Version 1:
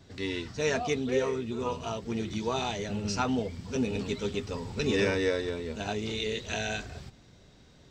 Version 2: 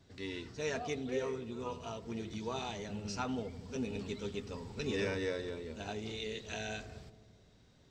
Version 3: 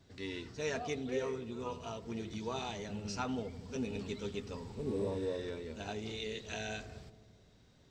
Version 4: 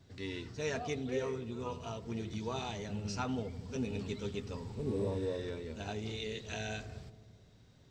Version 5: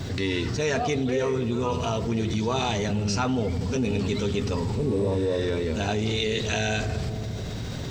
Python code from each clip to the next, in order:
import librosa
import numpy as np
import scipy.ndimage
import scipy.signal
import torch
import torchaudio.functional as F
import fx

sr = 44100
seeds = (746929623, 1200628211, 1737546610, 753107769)

y1 = fx.echo_filtered(x, sr, ms=83, feedback_pct=79, hz=1400.0, wet_db=-16.0)
y1 = F.gain(torch.from_numpy(y1), -8.5).numpy()
y2 = fx.spec_repair(y1, sr, seeds[0], start_s=4.79, length_s=0.59, low_hz=1200.0, high_hz=7700.0, source='both')
y3 = fx.peak_eq(y2, sr, hz=110.0, db=5.5, octaves=1.1)
y4 = fx.env_flatten(y3, sr, amount_pct=70)
y4 = F.gain(torch.from_numpy(y4), 8.0).numpy()